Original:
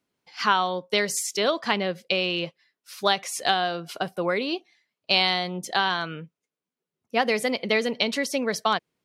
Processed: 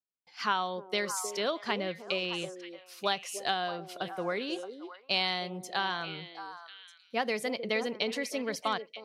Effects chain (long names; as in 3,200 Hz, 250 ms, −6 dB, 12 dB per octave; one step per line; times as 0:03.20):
noise gate with hold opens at −56 dBFS
on a send: echo through a band-pass that steps 311 ms, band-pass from 390 Hz, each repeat 1.4 octaves, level −6 dB
on the sum: level −8 dB